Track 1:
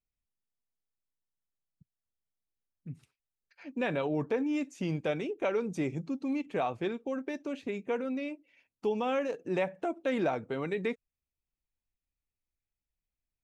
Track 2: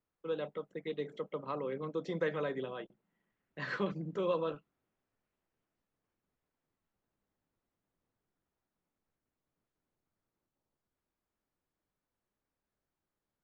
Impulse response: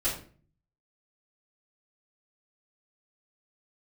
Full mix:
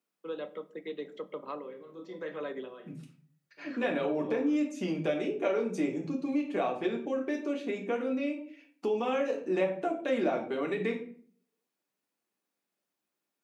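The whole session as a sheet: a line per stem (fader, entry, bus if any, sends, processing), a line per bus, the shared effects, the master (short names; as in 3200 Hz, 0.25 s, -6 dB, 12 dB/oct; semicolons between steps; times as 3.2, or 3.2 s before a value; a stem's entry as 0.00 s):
+1.0 dB, 0.00 s, send -5 dB, dry
0.0 dB, 0.00 s, send -18 dB, auto duck -19 dB, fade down 0.25 s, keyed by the first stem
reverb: on, RT60 0.45 s, pre-delay 3 ms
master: HPF 190 Hz 24 dB/oct; compressor 1.5:1, threshold -36 dBFS, peak gain reduction 7 dB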